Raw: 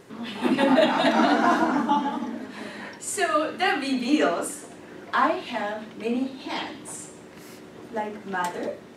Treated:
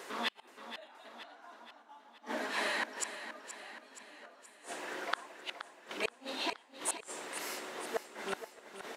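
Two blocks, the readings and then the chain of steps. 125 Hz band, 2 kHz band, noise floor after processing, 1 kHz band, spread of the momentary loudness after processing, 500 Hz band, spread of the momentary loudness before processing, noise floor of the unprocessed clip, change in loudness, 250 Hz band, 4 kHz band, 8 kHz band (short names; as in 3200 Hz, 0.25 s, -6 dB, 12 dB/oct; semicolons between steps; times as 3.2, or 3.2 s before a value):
under -20 dB, -10.5 dB, -61 dBFS, -17.5 dB, 17 LU, -17.0 dB, 18 LU, -45 dBFS, -14.5 dB, -24.0 dB, -9.0 dB, -6.0 dB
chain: HPF 630 Hz 12 dB/oct; flipped gate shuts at -27 dBFS, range -38 dB; on a send: feedback echo 0.474 s, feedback 55%, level -11 dB; on the sum: gain +6.5 dB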